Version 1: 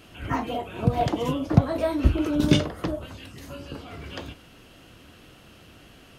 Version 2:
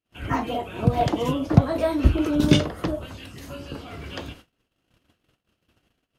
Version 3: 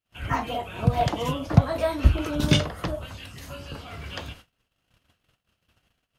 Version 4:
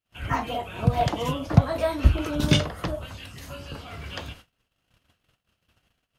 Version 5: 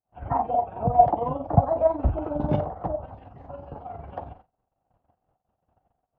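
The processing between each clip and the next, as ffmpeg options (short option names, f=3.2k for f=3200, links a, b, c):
-af "agate=range=-41dB:threshold=-46dB:ratio=16:detection=peak,volume=2dB"
-af "equalizer=f=320:t=o:w=1.3:g=-9,volume=1dB"
-af anull
-af "lowpass=f=780:t=q:w=5.5,tremolo=f=22:d=0.519,volume=-1.5dB"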